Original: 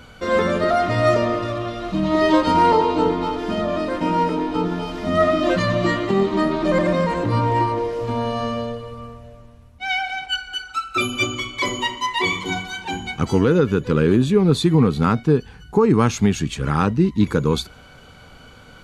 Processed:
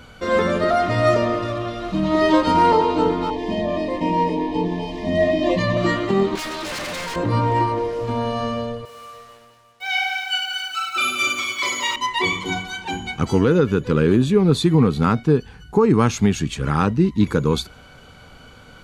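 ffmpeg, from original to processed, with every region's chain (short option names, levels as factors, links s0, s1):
-filter_complex "[0:a]asettb=1/sr,asplit=3[s0][s1][s2];[s0]atrim=end=3.304[s3];[s1]atrim=start=3.3:end=5.77,asetpts=PTS-STARTPTS,afade=t=in:d=0.004:c=qsin,afade=t=out:st=2.466:d=0.004:c=qsin,asuperstop=centerf=1400:order=20:qfactor=2.9,highshelf=f=9000:g=-12[s4];[s2]atrim=start=5.766[s5];[s3][s4]acrossfade=d=0.004:c1=hsin:c2=qsin[s6];[s6][s5]acrossfade=d=0.004:c1=qsin:c2=hsin,asettb=1/sr,asplit=3[s7][s8][s9];[s7]atrim=end=6.354[s10];[s8]atrim=start=6.35:end=7.16,asetpts=PTS-STARTPTS,afade=t=in:d=0.004:c=qsin,afade=t=out:st=0.806:d=0.004:c=qsin,tiltshelf=f=1200:g=-9,aeval=exprs='0.0668*(abs(mod(val(0)/0.0668+3,4)-2)-1)':c=same[s11];[s9]atrim=start=7.156[s12];[s10][s11]acrossfade=d=0.004:c1=hsin:c2=qsin[s13];[s13][s12]acrossfade=d=0.004:c1=qsin:c2=hsin,asettb=1/sr,asplit=3[s14][s15][s16];[s14]atrim=end=8.854[s17];[s15]atrim=start=8.85:end=11.96,asetpts=PTS-STARTPTS,afade=t=in:d=0.004:c=qsin,afade=t=out:st=3.106:d=0.004:c=qsin,highpass=f=1400:p=1,acrusher=bits=7:mix=0:aa=0.5,aecho=1:1:40|96|174.4|284.2|437.8|653|954.1:0.794|0.631|0.501|0.398|0.316|0.251|0.2,atrim=end_sample=137151[s18];[s16]atrim=start=11.956[s19];[s17][s18]acrossfade=d=0.004:c1=hsin:c2=qsin[s20];[s20][s19]acrossfade=d=0.004:c1=qsin:c2=hsin"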